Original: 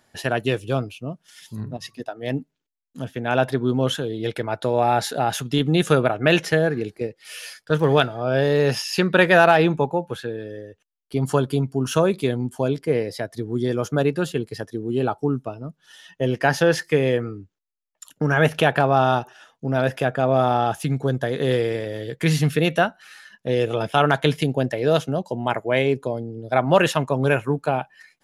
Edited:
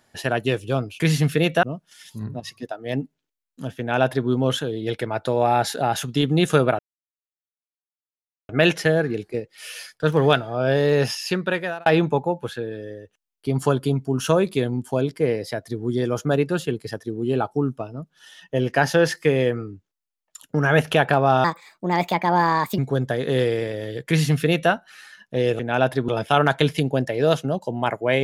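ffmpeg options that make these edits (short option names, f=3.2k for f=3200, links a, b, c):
-filter_complex "[0:a]asplit=9[a][b][c][d][e][f][g][h][i];[a]atrim=end=1.002[j];[b]atrim=start=22.208:end=22.842[k];[c]atrim=start=0.998:end=6.16,asetpts=PTS-STARTPTS,afade=t=out:st=5.158:d=0.004:c=hsin,apad=pad_dur=1.7[l];[d]atrim=start=6.16:end=9.53,asetpts=PTS-STARTPTS,afade=t=in:d=0.004:c=hsin,afade=t=out:st=2.57:d=0.8[m];[e]atrim=start=9.53:end=19.114,asetpts=PTS-STARTPTS,afade=t=in:d=0.004:c=hsin[n];[f]atrim=start=19.11:end=20.91,asetpts=PTS-STARTPTS,asetrate=59094,aresample=44100[o];[g]atrim=start=20.906:end=23.722[p];[h]atrim=start=3.158:end=3.652[q];[i]atrim=start=23.718[r];[j][k]acrossfade=d=0.004:c1=hsin:c2=hsin[s];[l][m][n]concat=n=3:v=0:a=1[t];[s][t]acrossfade=d=0.004:c1=hsin:c2=hsin[u];[u][o]acrossfade=d=0.004:c1=hsin:c2=hsin[v];[v][p]acrossfade=d=0.004:c1=hsin:c2=hsin[w];[w][q]acrossfade=d=0.004:c1=hsin:c2=hsin[x];[x][r]acrossfade=d=0.004:c1=hsin:c2=hsin"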